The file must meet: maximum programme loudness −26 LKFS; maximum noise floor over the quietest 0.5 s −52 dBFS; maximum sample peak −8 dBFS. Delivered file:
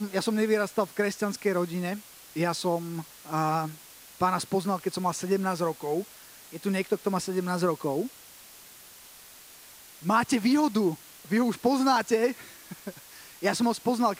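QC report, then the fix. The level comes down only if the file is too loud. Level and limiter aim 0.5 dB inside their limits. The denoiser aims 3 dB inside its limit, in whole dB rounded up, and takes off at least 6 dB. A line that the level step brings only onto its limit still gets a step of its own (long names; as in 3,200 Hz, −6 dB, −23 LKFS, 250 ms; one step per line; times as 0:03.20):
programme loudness −28.0 LKFS: in spec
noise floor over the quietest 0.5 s −50 dBFS: out of spec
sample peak −11.0 dBFS: in spec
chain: broadband denoise 6 dB, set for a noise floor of −50 dBFS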